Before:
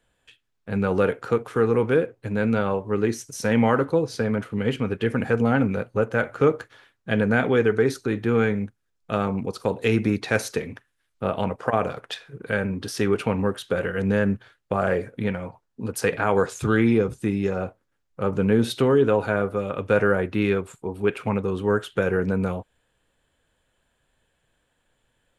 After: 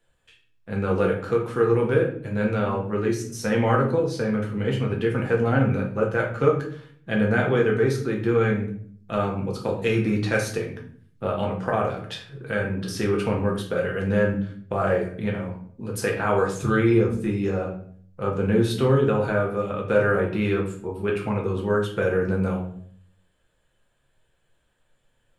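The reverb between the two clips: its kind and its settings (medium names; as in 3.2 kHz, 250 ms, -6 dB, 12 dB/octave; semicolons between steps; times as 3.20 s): simulated room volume 65 m³, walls mixed, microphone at 0.78 m; trim -4 dB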